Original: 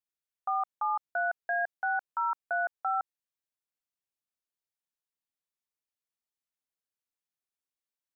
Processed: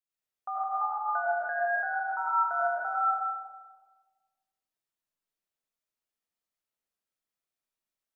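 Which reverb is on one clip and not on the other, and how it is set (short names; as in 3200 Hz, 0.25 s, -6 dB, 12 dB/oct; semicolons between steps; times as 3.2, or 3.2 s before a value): digital reverb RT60 1.4 s, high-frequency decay 0.35×, pre-delay 60 ms, DRR -7.5 dB; gain -5 dB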